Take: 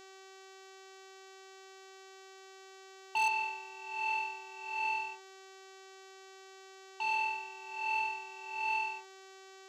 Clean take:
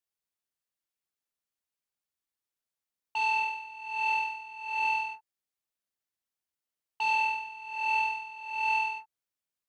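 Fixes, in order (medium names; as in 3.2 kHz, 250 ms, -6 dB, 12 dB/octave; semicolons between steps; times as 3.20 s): clip repair -25 dBFS; de-hum 383.4 Hz, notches 20; expander -46 dBFS, range -21 dB; trim 0 dB, from 3.28 s +5.5 dB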